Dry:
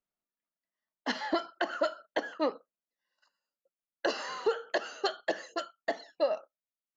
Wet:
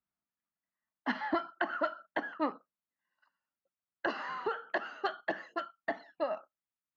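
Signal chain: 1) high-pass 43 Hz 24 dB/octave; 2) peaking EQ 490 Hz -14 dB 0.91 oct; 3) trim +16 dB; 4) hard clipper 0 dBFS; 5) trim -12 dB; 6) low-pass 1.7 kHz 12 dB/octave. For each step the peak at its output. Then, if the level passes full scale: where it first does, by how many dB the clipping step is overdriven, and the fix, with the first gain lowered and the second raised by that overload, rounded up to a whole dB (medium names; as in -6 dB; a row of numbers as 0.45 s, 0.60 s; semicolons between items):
-18.0 dBFS, -18.5 dBFS, -2.5 dBFS, -2.5 dBFS, -14.5 dBFS, -18.0 dBFS; nothing clips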